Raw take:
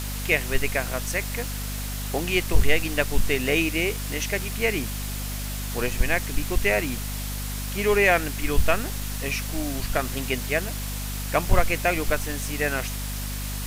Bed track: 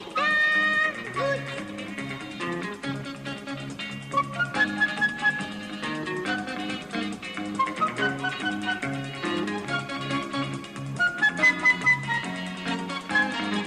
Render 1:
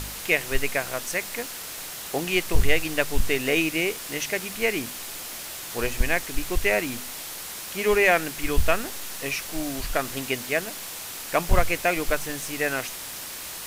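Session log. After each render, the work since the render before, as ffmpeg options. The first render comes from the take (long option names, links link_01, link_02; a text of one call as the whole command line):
ffmpeg -i in.wav -af "bandreject=frequency=50:width_type=h:width=4,bandreject=frequency=100:width_type=h:width=4,bandreject=frequency=150:width_type=h:width=4,bandreject=frequency=200:width_type=h:width=4,bandreject=frequency=250:width_type=h:width=4" out.wav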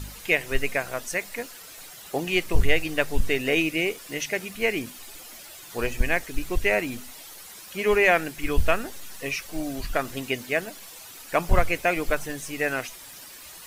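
ffmpeg -i in.wav -af "afftdn=noise_reduction=11:noise_floor=-37" out.wav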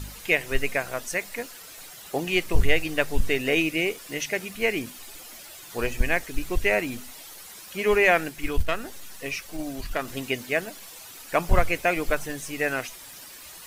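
ffmpeg -i in.wav -filter_complex "[0:a]asettb=1/sr,asplit=3[link_01][link_02][link_03];[link_01]atrim=end=8.294[link_04];[link_02]atrim=start=8.29:end=10.08,asetpts=PTS-STARTPTS,afade=type=in:duration=0.004:curve=qsin,afade=type=out:start_time=1.786:duration=0.004:curve=qsin,aeval=exprs='(tanh(5.01*val(0)+0.5)-tanh(0.5))/5.01':channel_layout=same[link_05];[link_03]atrim=start=10.076[link_06];[link_04][link_05]acrossfade=duration=0.004:curve1=hsin:curve2=qsin[link_07];[link_07][link_06]acrossfade=duration=0.004:curve1=qsin:curve2=hsin" out.wav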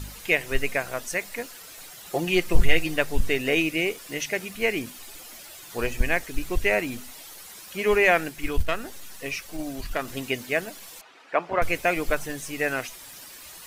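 ffmpeg -i in.wav -filter_complex "[0:a]asettb=1/sr,asplit=3[link_01][link_02][link_03];[link_01]atrim=end=2.074[link_04];[link_02]atrim=start=2.07:end=2.96,asetpts=PTS-STARTPTS,afade=type=in:duration=0.004:curve=qsin,afade=type=out:start_time=0.886:duration=0.004:curve=qsin,aecho=1:1:5.7:0.54,atrim=end_sample=39249[link_05];[link_03]atrim=start=2.956[link_06];[link_04][link_05]acrossfade=duration=0.004:curve1=hsin:curve2=qsin[link_07];[link_07][link_06]acrossfade=duration=0.004:curve1=qsin:curve2=hsin,asettb=1/sr,asplit=3[link_08][link_09][link_10];[link_08]atrim=end=11.014[link_11];[link_09]atrim=start=11.01:end=11.62,asetpts=PTS-STARTPTS,afade=type=in:duration=0.004:curve=qsin,afade=type=out:start_time=0.606:duration=0.004:curve=qsin,highpass=340,lowpass=2400[link_12];[link_10]atrim=start=11.616[link_13];[link_11][link_12]acrossfade=duration=0.004:curve1=hsin:curve2=qsin[link_14];[link_14][link_13]acrossfade=duration=0.004:curve1=qsin:curve2=hsin" out.wav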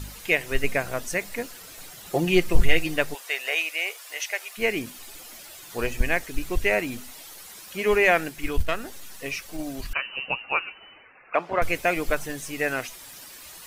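ffmpeg -i in.wav -filter_complex "[0:a]asettb=1/sr,asplit=3[link_01][link_02][link_03];[link_01]atrim=end=0.644[link_04];[link_02]atrim=start=0.64:end=2.5,asetpts=PTS-STARTPTS,afade=type=in:duration=0.004:curve=qsin,afade=type=out:start_time=1.856:duration=0.004:curve=qsin,lowshelf=frequency=340:gain=6.5[link_05];[link_03]atrim=start=2.496[link_06];[link_04][link_05]acrossfade=duration=0.004:curve1=hsin:curve2=qsin[link_07];[link_07][link_06]acrossfade=duration=0.004:curve1=qsin:curve2=hsin,asplit=3[link_08][link_09][link_10];[link_08]afade=type=out:start_time=3.13:duration=0.02[link_11];[link_09]highpass=frequency=630:width=0.5412,highpass=frequency=630:width=1.3066,afade=type=in:start_time=3.13:duration=0.02,afade=type=out:start_time=4.57:duration=0.02[link_12];[link_10]afade=type=in:start_time=4.57:duration=0.02[link_13];[link_11][link_12][link_13]amix=inputs=3:normalize=0,asettb=1/sr,asplit=3[link_14][link_15][link_16];[link_14]atrim=end=9.934[link_17];[link_15]atrim=start=9.93:end=11.35,asetpts=PTS-STARTPTS,afade=type=in:duration=0.004:curve=qsin,afade=type=out:start_time=1.416:duration=0.004:curve=qsin,lowpass=frequency=2600:width_type=q:width=0.5098,lowpass=frequency=2600:width_type=q:width=0.6013,lowpass=frequency=2600:width_type=q:width=0.9,lowpass=frequency=2600:width_type=q:width=2.563,afreqshift=-3000[link_18];[link_16]atrim=start=11.346[link_19];[link_17][link_18]acrossfade=duration=0.004:curve1=hsin:curve2=qsin[link_20];[link_20][link_19]acrossfade=duration=0.004:curve1=qsin:curve2=hsin" out.wav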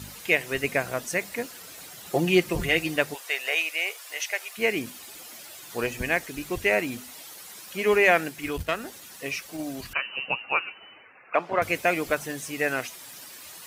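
ffmpeg -i in.wav -af "highpass=96" out.wav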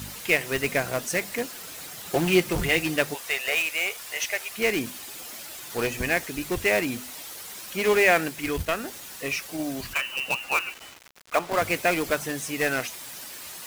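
ffmpeg -i in.wav -filter_complex "[0:a]asplit=2[link_01][link_02];[link_02]aeval=exprs='(mod(12.6*val(0)+1,2)-1)/12.6':channel_layout=same,volume=-7.5dB[link_03];[link_01][link_03]amix=inputs=2:normalize=0,acrusher=bits=6:mix=0:aa=0.000001" out.wav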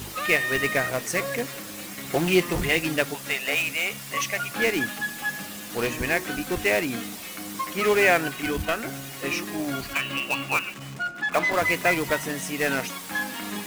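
ffmpeg -i in.wav -i bed.wav -filter_complex "[1:a]volume=-6dB[link_01];[0:a][link_01]amix=inputs=2:normalize=0" out.wav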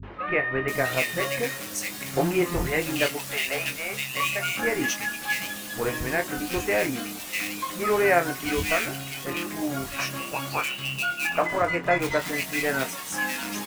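ffmpeg -i in.wav -filter_complex "[0:a]asplit=2[link_01][link_02];[link_02]adelay=23,volume=-7.5dB[link_03];[link_01][link_03]amix=inputs=2:normalize=0,acrossover=split=220|2200[link_04][link_05][link_06];[link_05]adelay=30[link_07];[link_06]adelay=680[link_08];[link_04][link_07][link_08]amix=inputs=3:normalize=0" out.wav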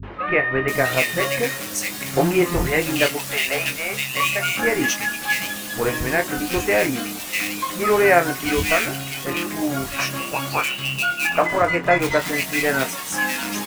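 ffmpeg -i in.wav -af "volume=5.5dB" out.wav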